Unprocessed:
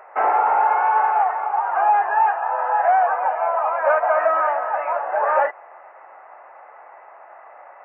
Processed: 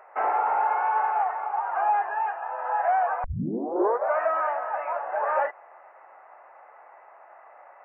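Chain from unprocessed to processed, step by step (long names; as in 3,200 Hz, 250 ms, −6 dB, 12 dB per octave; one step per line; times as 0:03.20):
0:02.01–0:02.65: dynamic equaliser 990 Hz, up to −4 dB, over −24 dBFS, Q 0.76
0:03.24: tape start 0.92 s
level −6.5 dB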